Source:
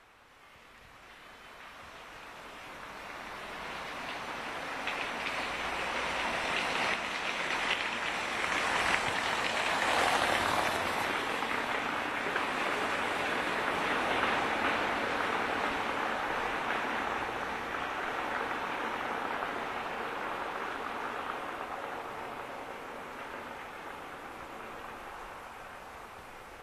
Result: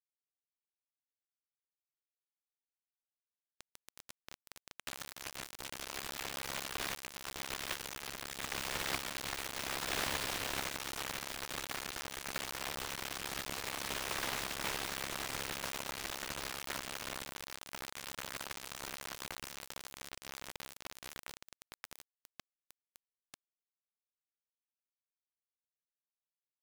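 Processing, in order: spectral contrast reduction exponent 0.16; ring modulator 190 Hz; distance through air 140 m; AM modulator 68 Hz, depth 45%; word length cut 6-bit, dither none; trim +1.5 dB

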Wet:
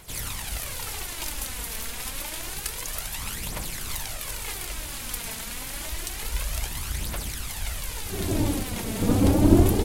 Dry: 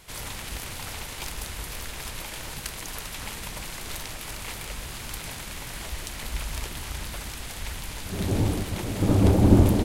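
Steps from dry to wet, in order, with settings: treble shelf 7.5 kHz +8 dB; phaser 0.28 Hz, delay 4.6 ms, feedback 48%; trim -1 dB

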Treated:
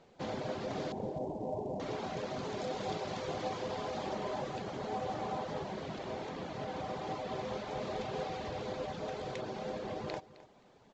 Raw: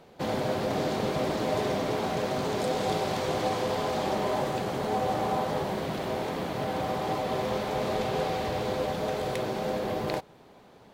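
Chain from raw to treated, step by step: reverb removal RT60 0.54 s; 0.92–1.80 s: steep low-pass 940 Hz 72 dB/octave; on a send: feedback delay 262 ms, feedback 19%, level -17.5 dB; on the sum: trim -8 dB; µ-law 128 kbps 16 kHz

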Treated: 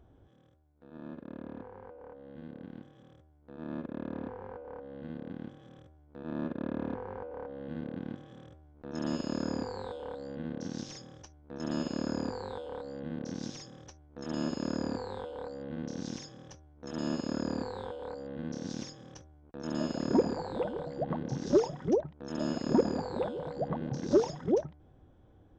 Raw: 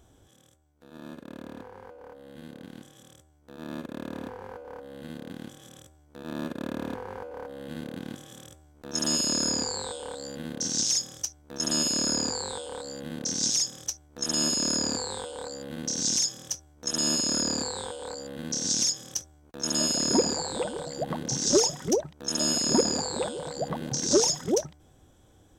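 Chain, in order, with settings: tape spacing loss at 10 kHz 41 dB

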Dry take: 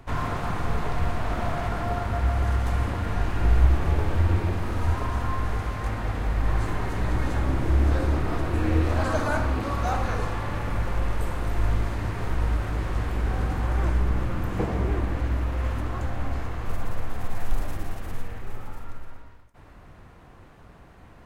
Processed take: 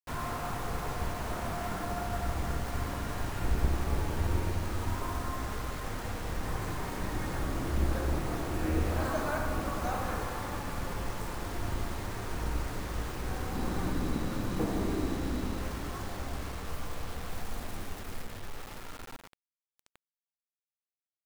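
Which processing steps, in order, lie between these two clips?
octave divider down 2 oct, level +1 dB; bass shelf 130 Hz -8 dB; bucket-brigade echo 89 ms, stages 1024, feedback 82%, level -10 dB; reverberation RT60 3.4 s, pre-delay 115 ms, DRR 15 dB; flange 1.8 Hz, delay 9.8 ms, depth 4.5 ms, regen -67%; bit crusher 7-bit; 13.55–15.61 s: small resonant body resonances 240/3900 Hz, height 8 dB, ringing for 20 ms; trim -2.5 dB

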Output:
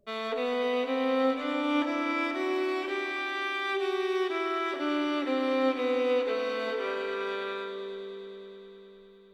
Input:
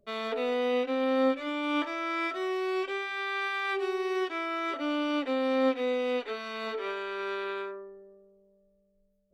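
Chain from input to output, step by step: multi-head delay 102 ms, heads all three, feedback 73%, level -14 dB

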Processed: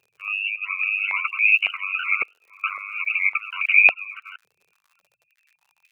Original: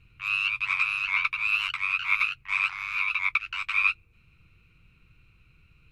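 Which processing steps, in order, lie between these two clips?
chunks repeated in reverse 438 ms, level -11 dB; spectral gate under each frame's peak -15 dB strong; 1.56–3.06 s: trance gate "xxx..xx." 74 bpm -24 dB; crackle 71 per s -46 dBFS; step-sequenced high-pass 3.6 Hz 440–2300 Hz; trim -1 dB

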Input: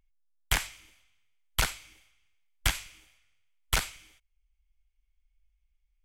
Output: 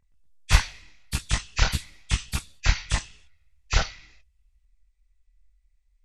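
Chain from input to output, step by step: knee-point frequency compression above 1.6 kHz 1.5:1; chorus voices 6, 0.61 Hz, delay 26 ms, depth 1.1 ms; ever faster or slower copies 120 ms, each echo +5 st, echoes 2; trim +6.5 dB

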